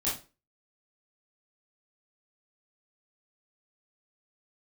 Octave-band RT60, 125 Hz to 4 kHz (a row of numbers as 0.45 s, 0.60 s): 0.35 s, 0.35 s, 0.35 s, 0.30 s, 0.30 s, 0.25 s